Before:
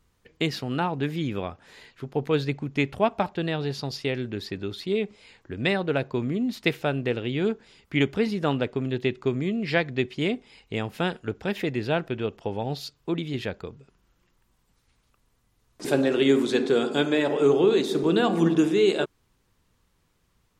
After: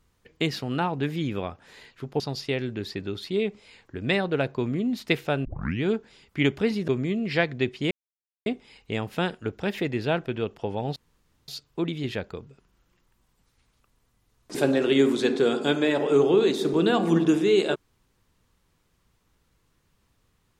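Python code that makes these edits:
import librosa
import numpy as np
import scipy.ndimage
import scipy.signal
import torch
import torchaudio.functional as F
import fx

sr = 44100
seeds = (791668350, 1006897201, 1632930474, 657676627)

y = fx.edit(x, sr, fx.cut(start_s=2.2, length_s=1.56),
    fx.tape_start(start_s=7.01, length_s=0.38),
    fx.cut(start_s=8.44, length_s=0.81),
    fx.insert_silence(at_s=10.28, length_s=0.55),
    fx.insert_room_tone(at_s=12.78, length_s=0.52), tone=tone)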